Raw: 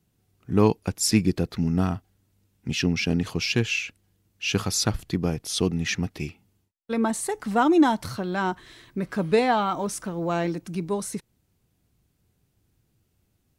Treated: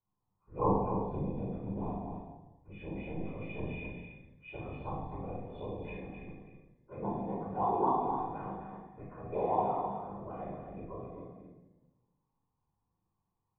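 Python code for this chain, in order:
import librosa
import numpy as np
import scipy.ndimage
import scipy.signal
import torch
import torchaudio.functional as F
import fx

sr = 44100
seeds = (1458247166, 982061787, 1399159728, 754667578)

y = fx.freq_snap(x, sr, grid_st=3)
y = fx.low_shelf(y, sr, hz=390.0, db=5.5)
y = fx.env_phaser(y, sr, low_hz=580.0, high_hz=2500.0, full_db=-9.5)
y = fx.comb_fb(y, sr, f0_hz=110.0, decay_s=1.2, harmonics='all', damping=0.0, mix_pct=60)
y = fx.whisperise(y, sr, seeds[0])
y = fx.formant_cascade(y, sr, vowel='a')
y = fx.doubler(y, sr, ms=40.0, db=-7.0)
y = y + 10.0 ** (-7.5 / 20.0) * np.pad(y, (int(258 * sr / 1000.0), 0))[:len(y)]
y = fx.room_shoebox(y, sr, seeds[1], volume_m3=2500.0, walls='furnished', distance_m=4.7)
y = y * librosa.db_to_amplitude(6.5)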